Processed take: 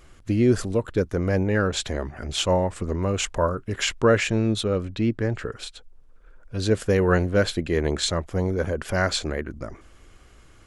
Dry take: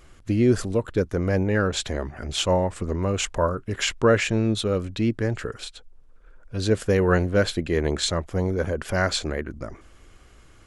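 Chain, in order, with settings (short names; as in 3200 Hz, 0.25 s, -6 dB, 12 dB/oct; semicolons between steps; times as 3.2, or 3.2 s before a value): 4.63–5.6 high shelf 6100 Hz -9.5 dB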